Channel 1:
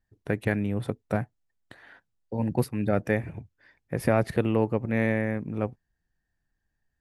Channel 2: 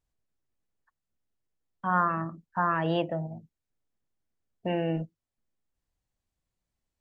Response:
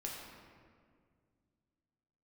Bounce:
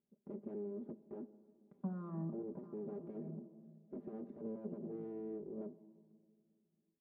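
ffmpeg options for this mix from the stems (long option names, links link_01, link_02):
-filter_complex "[0:a]aeval=exprs='abs(val(0))':channel_layout=same,volume=-6dB,asplit=3[link_01][link_02][link_03];[link_02]volume=-20.5dB[link_04];[1:a]alimiter=limit=-22.5dB:level=0:latency=1,acompressor=threshold=-35dB:ratio=6,volume=2.5dB,asplit=2[link_05][link_06];[link_06]volume=-15.5dB[link_07];[link_03]apad=whole_len=308861[link_08];[link_05][link_08]sidechaincompress=threshold=-52dB:ratio=8:attack=16:release=185[link_09];[2:a]atrim=start_sample=2205[link_10];[link_04][link_07]amix=inputs=2:normalize=0[link_11];[link_11][link_10]afir=irnorm=-1:irlink=0[link_12];[link_01][link_09][link_12]amix=inputs=3:normalize=0,aecho=1:1:5:0.85,asoftclip=type=tanh:threshold=-26.5dB,asuperpass=centerf=290:order=4:qfactor=1"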